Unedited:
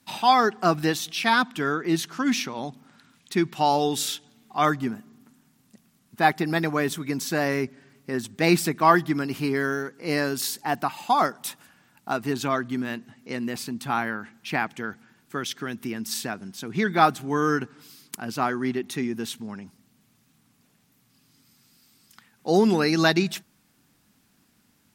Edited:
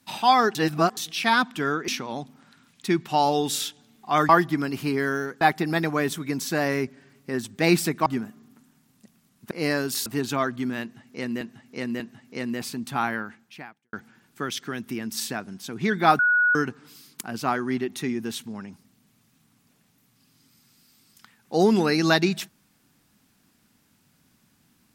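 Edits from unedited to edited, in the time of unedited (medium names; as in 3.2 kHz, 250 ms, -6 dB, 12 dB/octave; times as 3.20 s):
0.55–0.97 s: reverse
1.88–2.35 s: delete
4.76–6.21 s: swap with 8.86–9.98 s
10.53–12.18 s: delete
12.94–13.53 s: loop, 3 plays
14.15–14.87 s: fade out quadratic
17.13–17.49 s: bleep 1.46 kHz -16.5 dBFS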